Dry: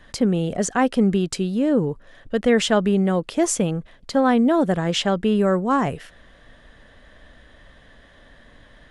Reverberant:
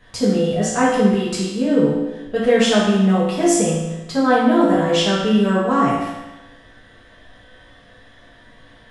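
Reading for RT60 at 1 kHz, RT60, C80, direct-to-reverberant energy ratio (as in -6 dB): 1.1 s, 1.1 s, 3.0 dB, -8.5 dB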